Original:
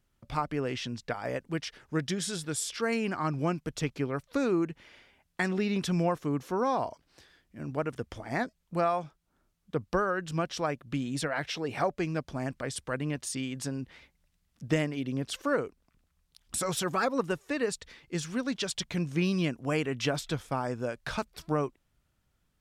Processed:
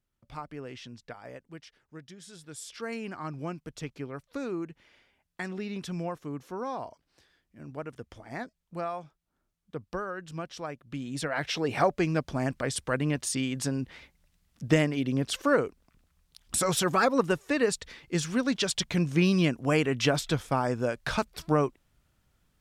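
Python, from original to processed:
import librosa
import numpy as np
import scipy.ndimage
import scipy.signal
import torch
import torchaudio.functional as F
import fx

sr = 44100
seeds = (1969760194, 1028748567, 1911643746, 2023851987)

y = fx.gain(x, sr, db=fx.line((1.06, -9.0), (2.15, -17.0), (2.79, -6.5), (10.83, -6.5), (11.58, 4.5)))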